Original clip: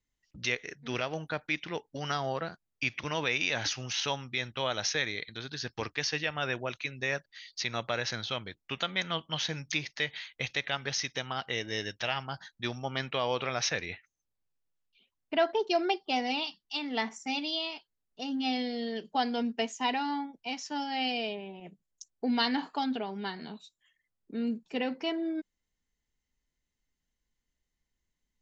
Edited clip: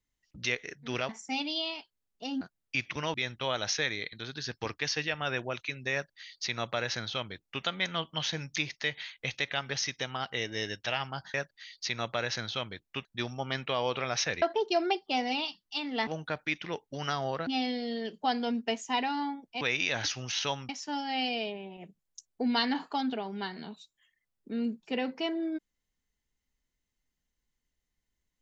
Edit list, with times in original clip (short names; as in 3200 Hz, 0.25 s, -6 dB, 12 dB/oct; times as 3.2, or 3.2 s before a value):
1.09–2.49 swap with 17.06–18.38
3.22–4.3 move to 20.52
7.09–8.8 copy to 12.5
13.87–15.41 cut